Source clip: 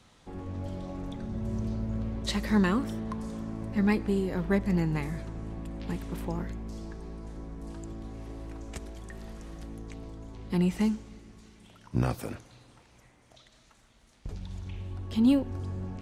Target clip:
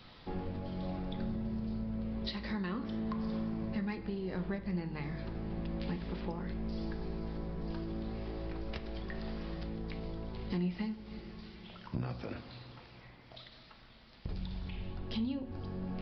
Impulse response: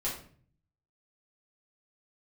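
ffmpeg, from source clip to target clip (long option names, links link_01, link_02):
-filter_complex "[0:a]crystalizer=i=2.5:c=0,acompressor=threshold=-37dB:ratio=12,asplit=2[link_01][link_02];[1:a]atrim=start_sample=2205,lowpass=3200[link_03];[link_02][link_03]afir=irnorm=-1:irlink=0,volume=-9.5dB[link_04];[link_01][link_04]amix=inputs=2:normalize=0,aresample=11025,aresample=44100,volume=1dB"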